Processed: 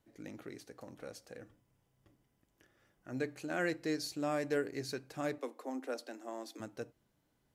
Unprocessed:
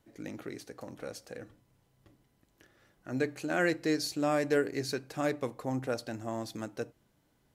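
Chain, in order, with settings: 1.42–3.14 s: band-stop 4.1 kHz, Q 7.9; 5.38–6.60 s: steep high-pass 240 Hz 96 dB/octave; trim -6 dB

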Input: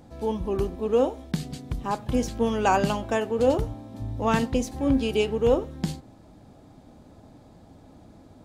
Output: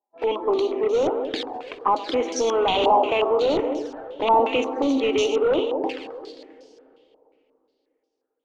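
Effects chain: elliptic high-pass 290 Hz, stop band 40 dB; gate -43 dBFS, range -44 dB; in parallel at 0 dB: compressor with a negative ratio -29 dBFS, ratio -1; on the sum: saturation -14 dBFS, distortion -19 dB; on a send: two-band feedback delay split 680 Hz, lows 217 ms, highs 133 ms, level -9 dB; on the sum: wavefolder -17.5 dBFS; touch-sensitive flanger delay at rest 5 ms, full sweep at -23.5 dBFS; plate-style reverb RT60 3.4 s, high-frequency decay 0.9×, DRR 16 dB; step-sequenced low-pass 5.6 Hz 900–5600 Hz; trim +2.5 dB

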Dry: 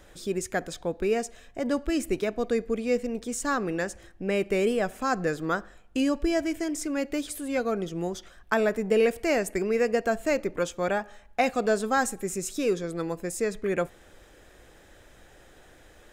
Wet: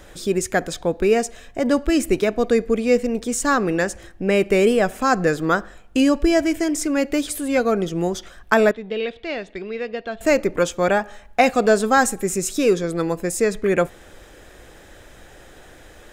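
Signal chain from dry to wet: 8.71–10.21 s: four-pole ladder low-pass 3.8 kHz, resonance 80%; trim +8.5 dB

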